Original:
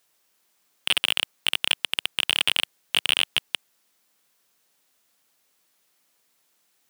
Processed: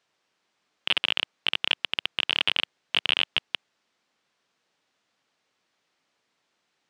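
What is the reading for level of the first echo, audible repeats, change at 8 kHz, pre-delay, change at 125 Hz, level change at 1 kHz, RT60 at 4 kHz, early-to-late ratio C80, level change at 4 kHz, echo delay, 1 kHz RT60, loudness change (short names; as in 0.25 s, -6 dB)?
none, none, -17.5 dB, none, n/a, -0.5 dB, none, none, -2.0 dB, none, none, -2.0 dB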